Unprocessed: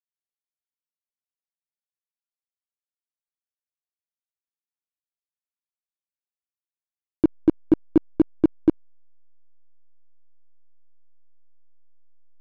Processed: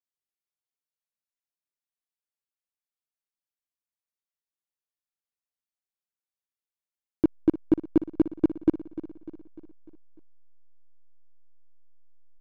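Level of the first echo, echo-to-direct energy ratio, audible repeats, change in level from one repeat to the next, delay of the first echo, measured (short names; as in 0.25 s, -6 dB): -14.5 dB, -13.0 dB, 4, -5.5 dB, 0.299 s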